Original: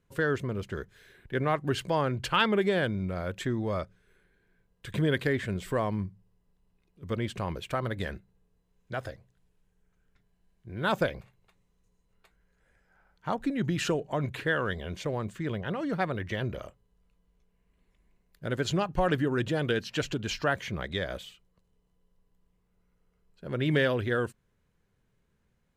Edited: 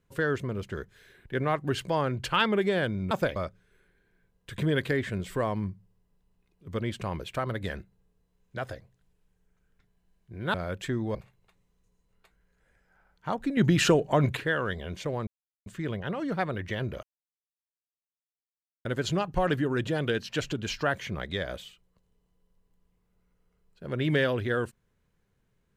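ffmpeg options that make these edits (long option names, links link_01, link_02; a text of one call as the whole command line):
ffmpeg -i in.wav -filter_complex "[0:a]asplit=10[link_01][link_02][link_03][link_04][link_05][link_06][link_07][link_08][link_09][link_10];[link_01]atrim=end=3.112[link_11];[link_02]atrim=start=10.898:end=11.152[link_12];[link_03]atrim=start=3.718:end=10.902[link_13];[link_04]atrim=start=3.108:end=3.722[link_14];[link_05]atrim=start=11.148:end=13.572[link_15];[link_06]atrim=start=13.568:end=14.372,asetpts=PTS-STARTPTS,volume=7dB[link_16];[link_07]atrim=start=14.368:end=15.27,asetpts=PTS-STARTPTS,afade=type=out:start_time=0.898:duration=0.004:curve=hsin,apad=pad_dur=0.39[link_17];[link_08]atrim=start=15.27:end=16.64,asetpts=PTS-STARTPTS,afade=type=in:duration=0.004:curve=hsin,afade=type=out:start_time=1.366:duration=0.004:curve=hsin[link_18];[link_09]atrim=start=16.64:end=18.46,asetpts=PTS-STARTPTS,volume=0[link_19];[link_10]atrim=start=18.46,asetpts=PTS-STARTPTS,afade=type=in:duration=0.004:curve=hsin[link_20];[link_11][link_12]acrossfade=duration=0.004:curve1=hsin:curve2=hsin[link_21];[link_21][link_13]acrossfade=duration=0.004:curve1=hsin:curve2=hsin[link_22];[link_22][link_14]acrossfade=duration=0.004:curve1=hsin:curve2=hsin[link_23];[link_23][link_15]acrossfade=duration=0.004:curve1=hsin:curve2=hsin[link_24];[link_24][link_16]acrossfade=duration=0.004:curve1=hsin:curve2=hsin[link_25];[link_17][link_18][link_19][link_20]concat=n=4:v=0:a=1[link_26];[link_25][link_26]acrossfade=duration=0.004:curve1=hsin:curve2=hsin" out.wav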